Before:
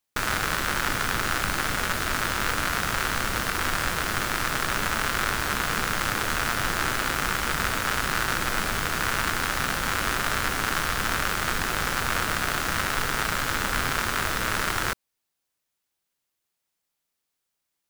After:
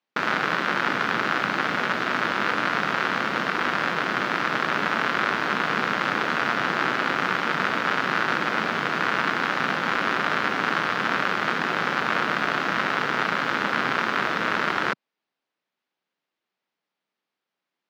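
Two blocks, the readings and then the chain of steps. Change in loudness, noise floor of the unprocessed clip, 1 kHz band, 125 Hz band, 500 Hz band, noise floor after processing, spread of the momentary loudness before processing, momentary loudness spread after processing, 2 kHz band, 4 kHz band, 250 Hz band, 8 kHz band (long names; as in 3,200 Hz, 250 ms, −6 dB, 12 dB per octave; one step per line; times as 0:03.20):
+2.0 dB, −81 dBFS, +3.5 dB, −4.5 dB, +4.5 dB, below −85 dBFS, 1 LU, 1 LU, +3.0 dB, −1.5 dB, +4.0 dB, −15.0 dB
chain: high-pass filter 170 Hz 24 dB per octave
high-frequency loss of the air 250 metres
level +5 dB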